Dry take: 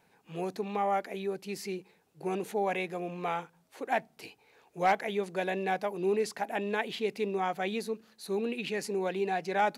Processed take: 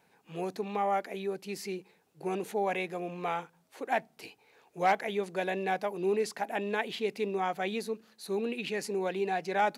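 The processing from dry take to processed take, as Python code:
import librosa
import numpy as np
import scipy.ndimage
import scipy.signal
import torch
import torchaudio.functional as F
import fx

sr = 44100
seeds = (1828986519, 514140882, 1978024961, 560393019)

y = fx.low_shelf(x, sr, hz=65.0, db=-10.5)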